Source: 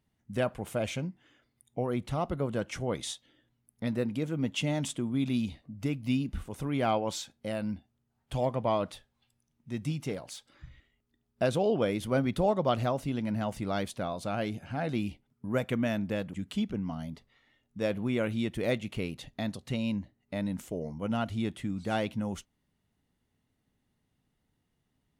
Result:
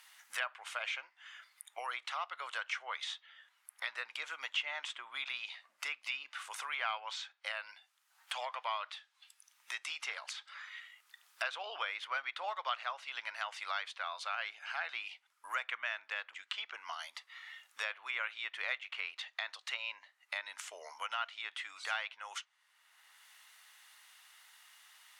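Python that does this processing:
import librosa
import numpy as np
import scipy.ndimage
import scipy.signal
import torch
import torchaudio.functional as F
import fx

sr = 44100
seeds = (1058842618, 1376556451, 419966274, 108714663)

y = fx.air_absorb(x, sr, metres=85.0, at=(16.31, 16.74))
y = scipy.signal.sosfilt(scipy.signal.cheby2(4, 80, 190.0, 'highpass', fs=sr, output='sos'), y)
y = fx.env_lowpass_down(y, sr, base_hz=2900.0, full_db=-41.0)
y = fx.band_squash(y, sr, depth_pct=70)
y = y * 10.0 ** (5.0 / 20.0)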